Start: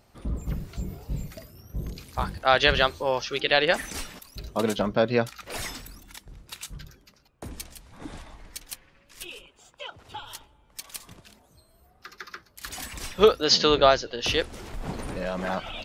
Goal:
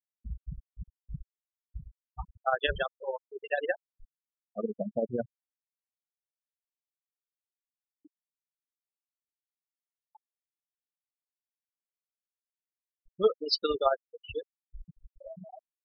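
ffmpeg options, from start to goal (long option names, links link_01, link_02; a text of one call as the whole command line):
ffmpeg -i in.wav -af "afftfilt=real='re*gte(hypot(re,im),0.251)':imag='im*gte(hypot(re,im),0.251)':win_size=1024:overlap=0.75,tremolo=f=18:d=0.66,volume=-4.5dB" out.wav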